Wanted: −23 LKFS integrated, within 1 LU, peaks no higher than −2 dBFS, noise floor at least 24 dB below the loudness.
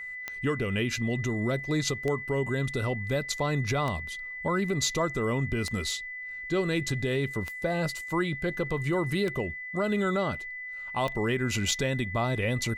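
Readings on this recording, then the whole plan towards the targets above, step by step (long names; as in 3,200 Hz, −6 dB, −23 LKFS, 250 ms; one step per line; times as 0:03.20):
number of clicks 7; interfering tone 2,000 Hz; level of the tone −36 dBFS; integrated loudness −29.5 LKFS; sample peak −14.0 dBFS; target loudness −23.0 LKFS
→ click removal
notch filter 2,000 Hz, Q 30
level +6.5 dB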